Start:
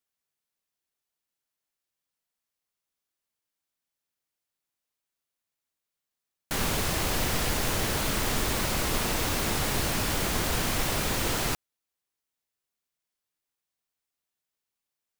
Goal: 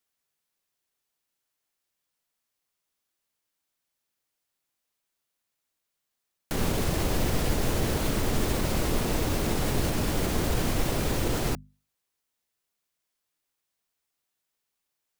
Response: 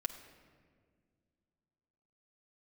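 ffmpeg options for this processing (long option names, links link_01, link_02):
-filter_complex "[0:a]bandreject=frequency=50:width_type=h:width=6,bandreject=frequency=100:width_type=h:width=6,bandreject=frequency=150:width_type=h:width=6,bandreject=frequency=200:width_type=h:width=6,bandreject=frequency=250:width_type=h:width=6,acrossover=split=620[link_01][link_02];[link_02]alimiter=level_in=6dB:limit=-24dB:level=0:latency=1:release=226,volume=-6dB[link_03];[link_01][link_03]amix=inputs=2:normalize=0,volume=4.5dB"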